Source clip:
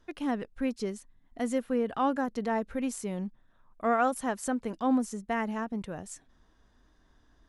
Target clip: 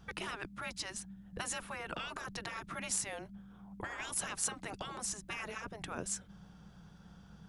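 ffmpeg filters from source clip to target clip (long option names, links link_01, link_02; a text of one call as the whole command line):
ffmpeg -i in.wav -af "afreqshift=-210,afftfilt=real='re*lt(hypot(re,im),0.0398)':imag='im*lt(hypot(re,im),0.0398)':win_size=1024:overlap=0.75,aeval=exprs='val(0)+0.000398*(sin(2*PI*60*n/s)+sin(2*PI*2*60*n/s)/2+sin(2*PI*3*60*n/s)/3+sin(2*PI*4*60*n/s)/4+sin(2*PI*5*60*n/s)/5)':channel_layout=same,volume=6.5dB" out.wav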